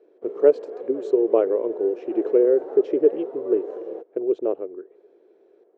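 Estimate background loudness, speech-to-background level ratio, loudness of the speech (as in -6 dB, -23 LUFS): -34.0 LUFS, 11.5 dB, -22.5 LUFS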